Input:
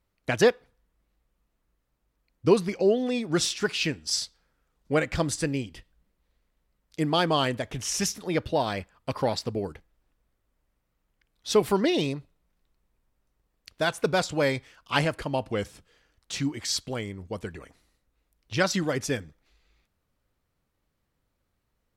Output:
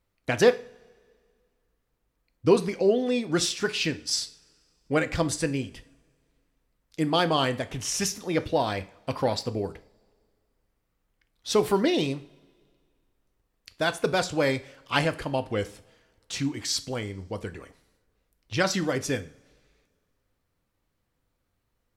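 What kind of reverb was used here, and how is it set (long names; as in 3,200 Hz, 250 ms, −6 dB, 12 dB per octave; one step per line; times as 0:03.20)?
coupled-rooms reverb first 0.4 s, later 2 s, from −22 dB, DRR 10 dB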